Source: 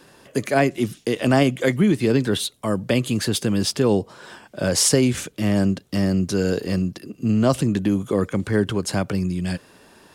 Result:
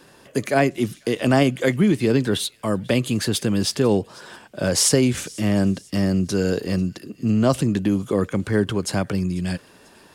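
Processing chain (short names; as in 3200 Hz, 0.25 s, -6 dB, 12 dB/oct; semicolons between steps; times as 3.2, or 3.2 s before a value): thin delay 0.493 s, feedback 41%, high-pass 2000 Hz, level -22 dB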